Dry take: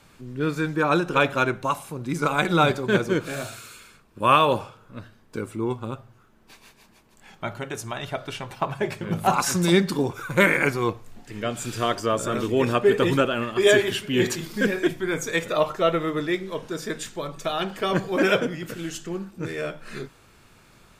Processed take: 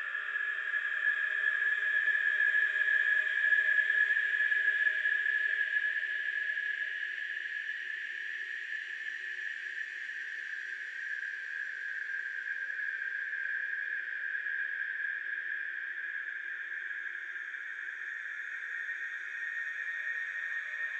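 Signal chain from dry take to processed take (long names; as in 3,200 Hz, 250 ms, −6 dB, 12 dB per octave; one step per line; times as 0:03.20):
four-pole ladder band-pass 1,800 Hz, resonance 85%
extreme stretch with random phases 11×, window 1.00 s, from 0:13.42
level −5.5 dB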